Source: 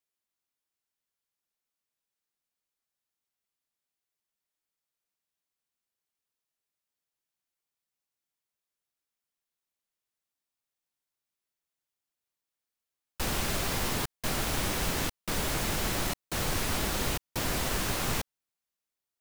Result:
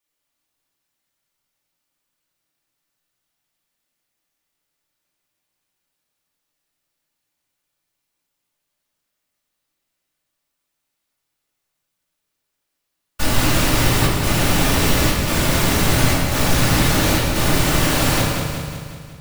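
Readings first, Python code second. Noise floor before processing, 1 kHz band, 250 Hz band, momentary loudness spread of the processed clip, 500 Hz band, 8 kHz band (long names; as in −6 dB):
below −85 dBFS, +12.5 dB, +16.0 dB, 8 LU, +13.5 dB, +11.5 dB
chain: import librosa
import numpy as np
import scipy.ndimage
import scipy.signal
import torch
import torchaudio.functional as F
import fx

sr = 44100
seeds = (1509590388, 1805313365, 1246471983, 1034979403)

p1 = fx.whisperise(x, sr, seeds[0])
p2 = p1 + fx.echo_feedback(p1, sr, ms=183, feedback_pct=56, wet_db=-6.5, dry=0)
p3 = fx.room_shoebox(p2, sr, seeds[1], volume_m3=650.0, walls='mixed', distance_m=2.5)
y = F.gain(torch.from_numpy(p3), 6.0).numpy()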